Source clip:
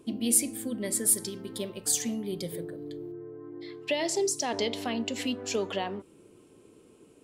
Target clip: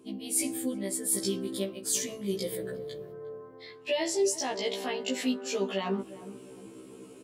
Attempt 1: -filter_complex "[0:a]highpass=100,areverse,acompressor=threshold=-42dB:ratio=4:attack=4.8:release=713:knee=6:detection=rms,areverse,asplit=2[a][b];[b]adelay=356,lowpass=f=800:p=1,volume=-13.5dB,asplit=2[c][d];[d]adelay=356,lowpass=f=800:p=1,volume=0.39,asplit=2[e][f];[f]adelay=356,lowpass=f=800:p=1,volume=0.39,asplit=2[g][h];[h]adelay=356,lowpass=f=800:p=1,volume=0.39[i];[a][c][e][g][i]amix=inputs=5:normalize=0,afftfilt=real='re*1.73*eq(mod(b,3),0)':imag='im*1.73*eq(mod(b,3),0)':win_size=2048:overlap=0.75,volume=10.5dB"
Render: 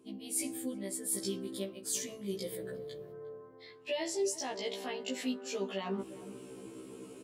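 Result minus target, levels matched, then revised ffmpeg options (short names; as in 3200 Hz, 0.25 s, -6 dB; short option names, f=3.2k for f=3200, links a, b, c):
compressor: peak gain reduction +6 dB
-filter_complex "[0:a]highpass=100,areverse,acompressor=threshold=-34dB:ratio=4:attack=4.8:release=713:knee=6:detection=rms,areverse,asplit=2[a][b];[b]adelay=356,lowpass=f=800:p=1,volume=-13.5dB,asplit=2[c][d];[d]adelay=356,lowpass=f=800:p=1,volume=0.39,asplit=2[e][f];[f]adelay=356,lowpass=f=800:p=1,volume=0.39,asplit=2[g][h];[h]adelay=356,lowpass=f=800:p=1,volume=0.39[i];[a][c][e][g][i]amix=inputs=5:normalize=0,afftfilt=real='re*1.73*eq(mod(b,3),0)':imag='im*1.73*eq(mod(b,3),0)':win_size=2048:overlap=0.75,volume=10.5dB"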